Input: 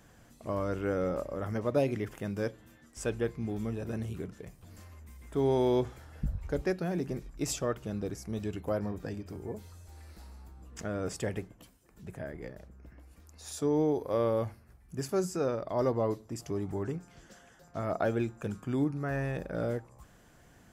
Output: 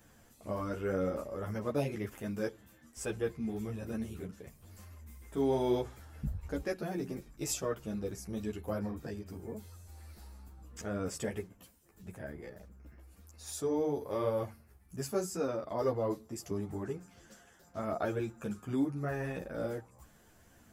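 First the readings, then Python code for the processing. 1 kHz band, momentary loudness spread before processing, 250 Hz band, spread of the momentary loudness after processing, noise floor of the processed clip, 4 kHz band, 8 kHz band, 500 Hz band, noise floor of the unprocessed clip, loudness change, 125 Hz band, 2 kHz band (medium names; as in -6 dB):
-3.0 dB, 20 LU, -3.0 dB, 19 LU, -62 dBFS, -2.0 dB, 0.0 dB, -3.5 dB, -59 dBFS, -3.5 dB, -4.5 dB, -3.0 dB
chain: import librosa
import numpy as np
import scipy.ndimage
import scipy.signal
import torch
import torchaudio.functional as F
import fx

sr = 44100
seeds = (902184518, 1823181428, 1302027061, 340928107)

y = fx.high_shelf(x, sr, hz=10000.0, db=10.0)
y = fx.ensemble(y, sr)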